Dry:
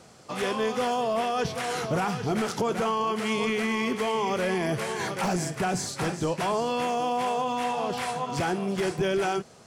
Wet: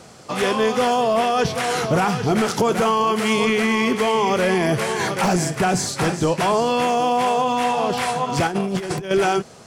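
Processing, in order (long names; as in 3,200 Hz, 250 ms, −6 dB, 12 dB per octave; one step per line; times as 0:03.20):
0:02.54–0:03.43: high-shelf EQ 10,000 Hz +6 dB
0:08.47–0:09.11: compressor whose output falls as the input rises −31 dBFS, ratio −0.5
level +8 dB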